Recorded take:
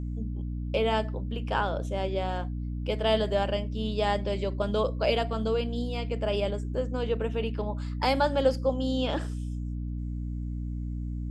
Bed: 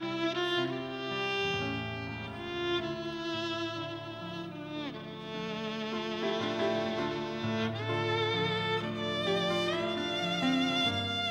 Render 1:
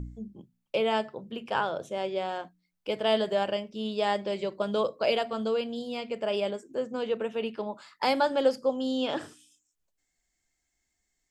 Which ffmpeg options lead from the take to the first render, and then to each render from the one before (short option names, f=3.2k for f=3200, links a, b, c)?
-af "bandreject=f=60:t=h:w=4,bandreject=f=120:t=h:w=4,bandreject=f=180:t=h:w=4,bandreject=f=240:t=h:w=4,bandreject=f=300:t=h:w=4"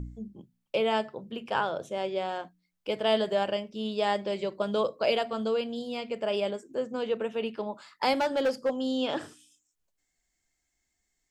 -filter_complex "[0:a]asettb=1/sr,asplit=3[a][b][c];[a]atrim=end=8.134[d];[b]atrim=start=8.13:end=8.86,asetpts=PTS-STARTPTS,afade=t=in:d=0.004:c=qsin,afade=t=out:st=0.726:d=0.004:c=qsin,asoftclip=type=hard:threshold=-21.5dB[e];[c]atrim=start=8.856[f];[d][e]acrossfade=d=0.004:c1=hsin:c2=qsin[g];[g][f]acrossfade=d=0.004:c1=qsin:c2=hsin"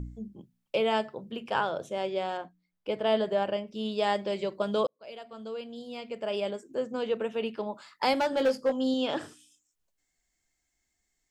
-filter_complex "[0:a]asettb=1/sr,asplit=3[a][b][c];[a]atrim=end=2.374[d];[b]atrim=start=2.37:end=3.68,asetpts=PTS-STARTPTS,afade=t=in:d=0.004:c=qsin,afade=t=out:st=1.306:d=0.004:c=qsin,highshelf=f=3.1k:g=-9.5[e];[c]atrim=start=3.676[f];[d][e]acrossfade=d=0.004:c1=hsin:c2=qsin[g];[g][f]acrossfade=d=0.004:c1=qsin:c2=hsin,asettb=1/sr,asplit=3[h][i][j];[h]atrim=end=8.314[k];[i]atrim=start=8.31:end=8.94,asetpts=PTS-STARTPTS,afade=t=in:d=0.004:c=qsin,afade=t=out:st=0.626:d=0.004:c=qsin,asplit=2[l][m];[m]adelay=19,volume=-8dB[n];[l][n]amix=inputs=2:normalize=0,atrim=end_sample=27783[o];[j]atrim=start=8.936[p];[k][o]acrossfade=d=0.004:c1=hsin:c2=qsin[q];[q][p]acrossfade=d=0.004:c1=qsin:c2=hsin,asplit=2[r][s];[r]atrim=end=4.87,asetpts=PTS-STARTPTS,afade=t=out:st=4.866:d=0.004:c=hsin[t];[s]atrim=start=4.87,asetpts=PTS-STARTPTS,afade=t=in:d=1.95[u];[t][u]concat=n=2:v=0:a=1"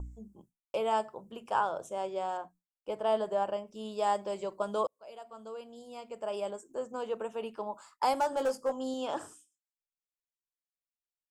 -af "agate=range=-33dB:threshold=-49dB:ratio=3:detection=peak,equalizer=f=125:t=o:w=1:g=-9,equalizer=f=250:t=o:w=1:g=-7,equalizer=f=500:t=o:w=1:g=-4,equalizer=f=1k:t=o:w=1:g=5,equalizer=f=2k:t=o:w=1:g=-10,equalizer=f=4k:t=o:w=1:g=-11,equalizer=f=8k:t=o:w=1:g=7"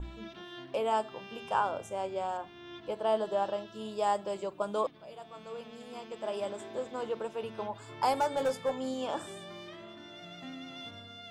-filter_complex "[1:a]volume=-15.5dB[a];[0:a][a]amix=inputs=2:normalize=0"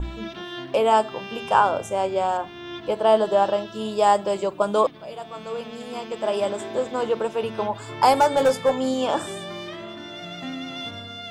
-af "volume=11.5dB"